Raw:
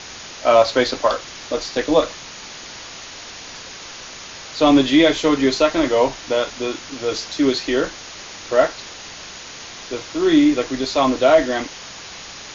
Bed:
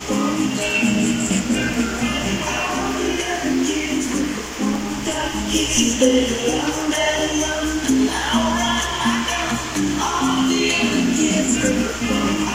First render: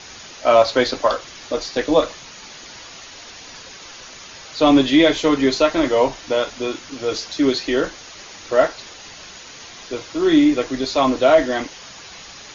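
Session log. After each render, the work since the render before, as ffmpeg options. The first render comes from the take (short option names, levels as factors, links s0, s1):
-af "afftdn=nr=6:nf=-37"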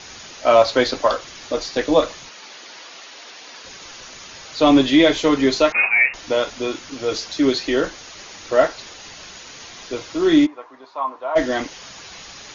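-filter_complex "[0:a]asettb=1/sr,asplit=3[s0][s1][s2];[s0]atrim=end=2.294[s3];[s1]atrim=start=2.29:end=3.64,asetpts=PTS-STARTPTS,afade=t=in:d=0.004:c=qsin,afade=t=out:st=1.346:d=0.004:c=qsin,highpass=320,lowpass=5900[s4];[s2]atrim=start=3.636[s5];[s3][s4]acrossfade=d=0.004:c1=hsin:c2=qsin[s6];[s6][s5]acrossfade=d=0.004:c1=qsin:c2=hsin,asettb=1/sr,asplit=3[s7][s8][s9];[s7]atrim=end=5.724[s10];[s8]atrim=start=5.72:end=6.14,asetpts=PTS-STARTPTS,afade=t=in:d=0.004:c=qsin,afade=t=out:st=0.416:d=0.004:c=qsin,lowpass=f=2400:t=q:w=0.5098,lowpass=f=2400:t=q:w=0.6013,lowpass=f=2400:t=q:w=0.9,lowpass=f=2400:t=q:w=2.563,afreqshift=-2800[s11];[s9]atrim=start=6.136[s12];[s10][s11]acrossfade=d=0.004:c1=hsin:c2=qsin[s13];[s13][s12]acrossfade=d=0.004:c1=qsin:c2=hsin,asplit=3[s14][s15][s16];[s14]afade=t=out:st=10.45:d=0.02[s17];[s15]bandpass=f=990:t=q:w=4.8,afade=t=in:st=10.45:d=0.02,afade=t=out:st=11.35:d=0.02[s18];[s16]afade=t=in:st=11.35:d=0.02[s19];[s17][s18][s19]amix=inputs=3:normalize=0"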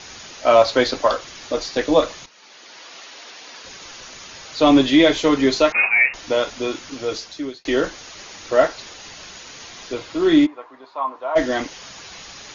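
-filter_complex "[0:a]asettb=1/sr,asplit=3[s0][s1][s2];[s0]atrim=end=9.934[s3];[s1]atrim=start=9.93:end=11.15,asetpts=PTS-STARTPTS,afade=t=in:d=0.004:c=qsin,afade=t=out:st=1.216:d=0.004:c=qsin,equalizer=f=5900:t=o:w=0.42:g=-6[s4];[s2]atrim=start=11.146[s5];[s3][s4]acrossfade=d=0.004:c1=hsin:c2=qsin[s6];[s6][s5]acrossfade=d=0.004:c1=qsin:c2=hsin,asplit=3[s7][s8][s9];[s7]atrim=end=2.26,asetpts=PTS-STARTPTS,afade=t=out:st=2.256:d=0.004:c=hsin:silence=0.223872[s10];[s8]atrim=start=2.26:end=7.65,asetpts=PTS-STARTPTS,afade=t=in:d=0.72:silence=0.223872,afade=t=out:st=4.67:d=0.72[s11];[s9]atrim=start=7.65,asetpts=PTS-STARTPTS,afade=t=in:d=0.004:c=hsin[s12];[s10][s11][s12]concat=n=3:v=0:a=1"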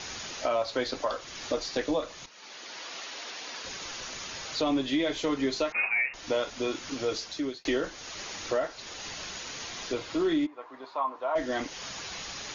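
-af "alimiter=limit=0.237:level=0:latency=1:release=491,acompressor=threshold=0.0178:ratio=1.5"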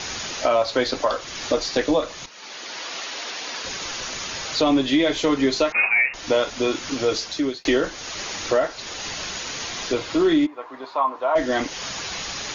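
-af "volume=2.66"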